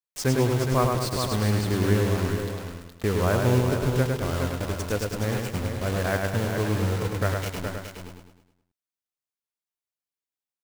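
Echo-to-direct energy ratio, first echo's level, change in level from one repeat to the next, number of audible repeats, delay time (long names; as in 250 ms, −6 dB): −1.0 dB, −4.0 dB, −3.0 dB, 8, 104 ms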